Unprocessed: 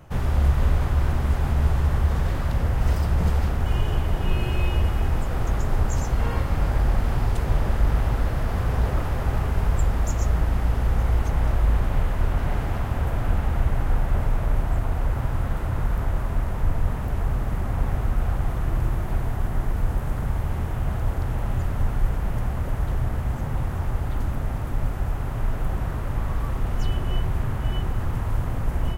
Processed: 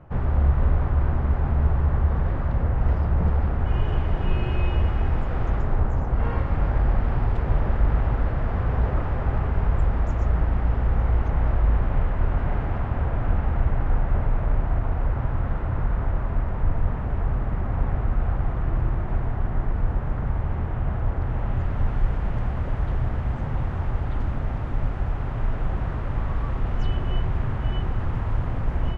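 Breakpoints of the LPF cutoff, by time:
3.44 s 1600 Hz
3.94 s 2500 Hz
5.47 s 2500 Hz
6.06 s 1300 Hz
6.27 s 2100 Hz
21.14 s 2100 Hz
21.99 s 3300 Hz

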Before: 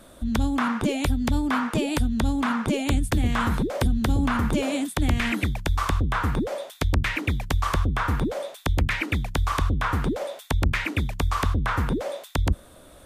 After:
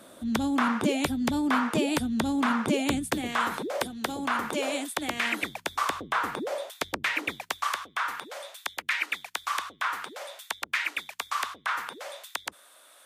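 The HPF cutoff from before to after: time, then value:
2.96 s 190 Hz
3.38 s 450 Hz
7.28 s 450 Hz
7.74 s 1100 Hz

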